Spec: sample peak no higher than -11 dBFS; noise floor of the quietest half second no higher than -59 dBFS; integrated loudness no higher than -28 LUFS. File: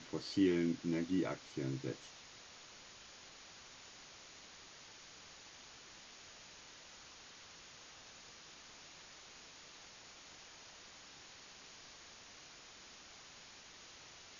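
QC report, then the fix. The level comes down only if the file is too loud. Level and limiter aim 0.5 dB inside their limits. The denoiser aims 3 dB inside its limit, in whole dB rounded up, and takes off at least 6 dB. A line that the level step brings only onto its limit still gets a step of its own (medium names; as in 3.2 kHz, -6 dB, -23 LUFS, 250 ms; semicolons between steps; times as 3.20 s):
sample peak -21.0 dBFS: pass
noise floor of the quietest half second -57 dBFS: fail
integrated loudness -45.5 LUFS: pass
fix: noise reduction 6 dB, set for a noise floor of -57 dBFS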